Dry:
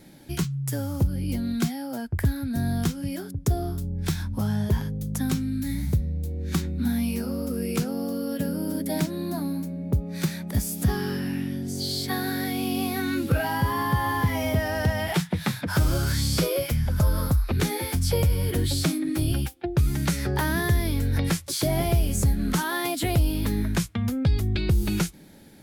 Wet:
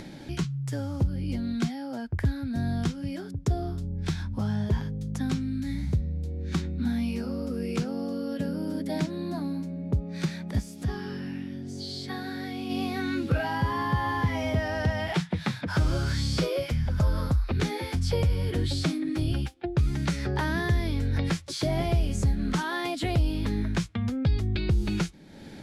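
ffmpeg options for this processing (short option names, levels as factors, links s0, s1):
-filter_complex "[0:a]asplit=3[s0][s1][s2];[s0]afade=t=out:st=10.59:d=0.02[s3];[s1]flanger=delay=2.5:depth=2.4:regen=-75:speed=1.2:shape=triangular,afade=t=in:st=10.59:d=0.02,afade=t=out:st=12.69:d=0.02[s4];[s2]afade=t=in:st=12.69:d=0.02[s5];[s3][s4][s5]amix=inputs=3:normalize=0,lowpass=5700,acompressor=mode=upward:threshold=0.0316:ratio=2.5,volume=0.75"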